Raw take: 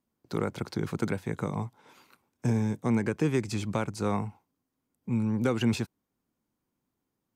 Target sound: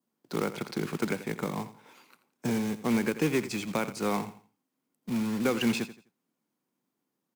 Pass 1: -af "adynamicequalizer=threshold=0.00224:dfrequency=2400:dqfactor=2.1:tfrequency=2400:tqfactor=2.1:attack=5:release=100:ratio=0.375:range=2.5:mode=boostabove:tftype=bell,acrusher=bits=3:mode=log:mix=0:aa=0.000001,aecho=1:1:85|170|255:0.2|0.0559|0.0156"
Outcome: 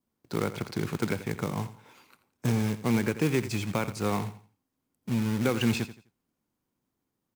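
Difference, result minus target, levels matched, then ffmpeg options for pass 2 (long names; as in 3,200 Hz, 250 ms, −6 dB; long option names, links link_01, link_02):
125 Hz band +6.5 dB
-af "adynamicequalizer=threshold=0.00224:dfrequency=2400:dqfactor=2.1:tfrequency=2400:tqfactor=2.1:attack=5:release=100:ratio=0.375:range=2.5:mode=boostabove:tftype=bell,highpass=frequency=160:width=0.5412,highpass=frequency=160:width=1.3066,acrusher=bits=3:mode=log:mix=0:aa=0.000001,aecho=1:1:85|170|255:0.2|0.0559|0.0156"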